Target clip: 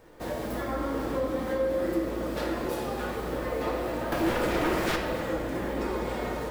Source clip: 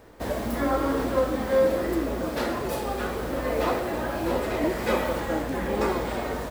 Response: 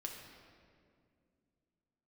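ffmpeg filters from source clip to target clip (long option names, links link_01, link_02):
-filter_complex "[0:a]asettb=1/sr,asplit=3[link_01][link_02][link_03];[link_01]atrim=end=4.124[link_04];[link_02]atrim=start=4.12:end=4.96,asetpts=PTS-STARTPTS,afade=type=in:duration=0.004:curve=qsin,afade=type=out:start_time=0.836:duration=0.004:curve=qsin,aeval=exprs='0.266*sin(PI/2*4.47*val(0)/0.266)':channel_layout=same[link_05];[link_03]atrim=start=4.956[link_06];[link_04][link_05]acrossfade=duration=0.004:curve1=hsin:curve2=qsin[link_07];[link_07][link_06]acrossfade=duration=0.004:curve1=qsin:curve2=hsin,acompressor=threshold=-25dB:ratio=6[link_08];[1:a]atrim=start_sample=2205[link_09];[link_08][link_09]afir=irnorm=-1:irlink=0"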